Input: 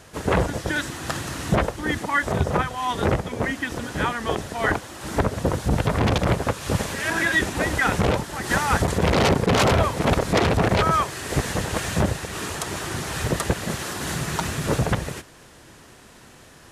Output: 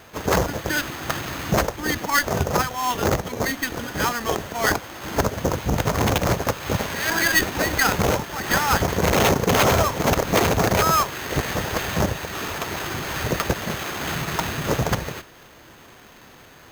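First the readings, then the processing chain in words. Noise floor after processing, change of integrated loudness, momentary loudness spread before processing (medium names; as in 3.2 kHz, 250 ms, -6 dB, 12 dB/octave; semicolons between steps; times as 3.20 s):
-47 dBFS, +1.0 dB, 9 LU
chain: sample-rate reducer 6.4 kHz, jitter 0%; bass shelf 390 Hz -4.5 dB; sliding maximum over 3 samples; trim +2.5 dB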